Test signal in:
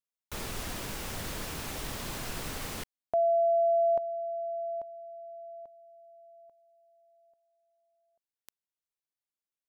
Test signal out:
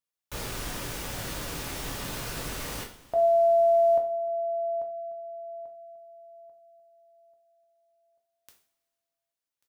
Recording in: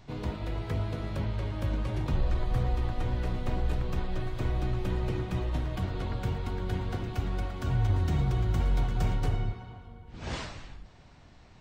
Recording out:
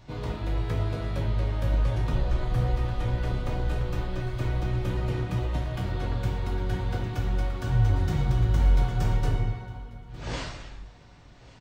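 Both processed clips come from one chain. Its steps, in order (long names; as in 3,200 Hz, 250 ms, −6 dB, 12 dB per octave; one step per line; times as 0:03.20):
single-tap delay 1,139 ms −22.5 dB
coupled-rooms reverb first 0.42 s, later 2.2 s, from −22 dB, DRR 1 dB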